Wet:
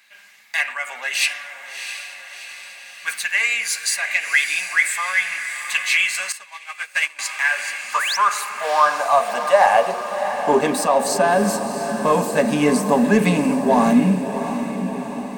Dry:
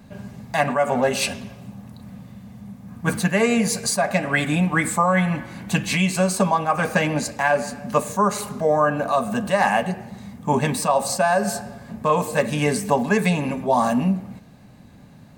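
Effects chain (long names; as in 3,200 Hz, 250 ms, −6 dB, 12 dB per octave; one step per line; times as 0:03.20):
high-pass filter sweep 2,100 Hz → 240 Hz, 0:07.35–0:11.32
in parallel at −7.5 dB: soft clipping −20.5 dBFS, distortion −7 dB
0:07.94–0:08.17: on the sum: sound drawn into the spectrogram rise 870–6,300 Hz −22 dBFS
on a send: feedback delay with all-pass diffusion 689 ms, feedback 59%, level −9 dB
0:06.32–0:07.19: on the sum: expander for the loud parts 2.5 to 1, over −28 dBFS
level −1 dB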